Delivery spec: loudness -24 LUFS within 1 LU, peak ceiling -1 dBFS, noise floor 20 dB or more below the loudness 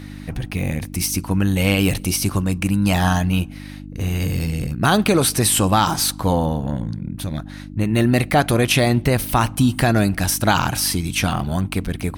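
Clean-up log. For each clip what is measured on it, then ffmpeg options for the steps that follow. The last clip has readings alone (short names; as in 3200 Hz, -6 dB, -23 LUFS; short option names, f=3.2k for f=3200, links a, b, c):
hum 50 Hz; harmonics up to 300 Hz; hum level -33 dBFS; loudness -19.5 LUFS; peak -3.0 dBFS; loudness target -24.0 LUFS
-> -af "bandreject=f=50:t=h:w=4,bandreject=f=100:t=h:w=4,bandreject=f=150:t=h:w=4,bandreject=f=200:t=h:w=4,bandreject=f=250:t=h:w=4,bandreject=f=300:t=h:w=4"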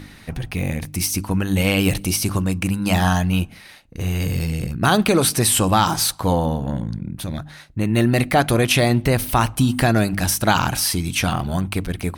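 hum none; loudness -19.5 LUFS; peak -3.5 dBFS; loudness target -24.0 LUFS
-> -af "volume=-4.5dB"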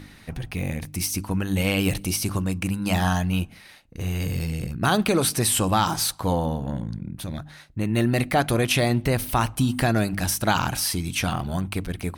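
loudness -24.0 LUFS; peak -8.0 dBFS; noise floor -48 dBFS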